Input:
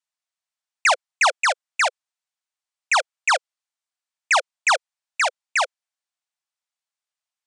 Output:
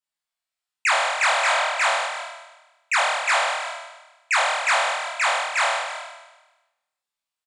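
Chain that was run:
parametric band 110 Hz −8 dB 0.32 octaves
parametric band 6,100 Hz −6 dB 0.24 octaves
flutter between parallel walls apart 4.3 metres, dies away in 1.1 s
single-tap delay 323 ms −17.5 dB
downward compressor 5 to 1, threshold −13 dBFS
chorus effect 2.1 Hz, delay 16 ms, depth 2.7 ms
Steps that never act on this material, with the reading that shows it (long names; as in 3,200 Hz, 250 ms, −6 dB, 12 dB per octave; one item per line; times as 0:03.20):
parametric band 110 Hz: nothing at its input below 450 Hz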